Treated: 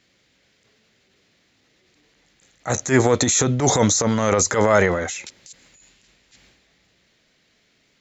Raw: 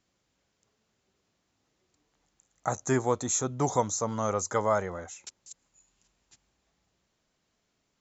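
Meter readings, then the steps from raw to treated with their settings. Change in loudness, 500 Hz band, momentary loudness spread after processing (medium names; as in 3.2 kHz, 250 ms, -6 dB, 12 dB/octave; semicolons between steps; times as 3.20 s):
+10.5 dB, +10.0 dB, 10 LU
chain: ten-band graphic EQ 125 Hz +3 dB, 250 Hz +4 dB, 500 Hz +5 dB, 1 kHz -4 dB, 2 kHz +11 dB, 4 kHz +8 dB; transient shaper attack -11 dB, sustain +7 dB; trim +7.5 dB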